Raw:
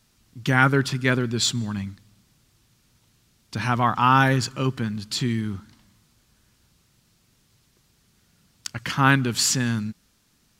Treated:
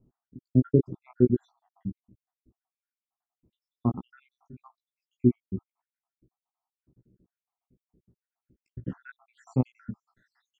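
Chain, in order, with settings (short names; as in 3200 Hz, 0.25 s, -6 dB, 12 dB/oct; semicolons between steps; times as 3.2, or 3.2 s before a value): random spectral dropouts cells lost 81%; bell 7100 Hz +7 dB 0.55 oct; doubler 16 ms -4 dB; dynamic EQ 4700 Hz, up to -7 dB, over -41 dBFS, Q 1.9; low-pass sweep 350 Hz -> 2400 Hz, 9.04–10.41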